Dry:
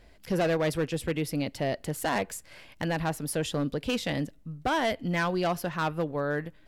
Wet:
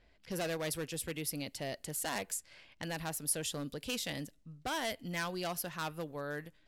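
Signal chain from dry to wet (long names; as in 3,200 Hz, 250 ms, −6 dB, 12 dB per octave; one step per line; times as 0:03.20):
low-pass that shuts in the quiet parts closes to 2,800 Hz, open at −27.5 dBFS
first-order pre-emphasis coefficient 0.8
level +2.5 dB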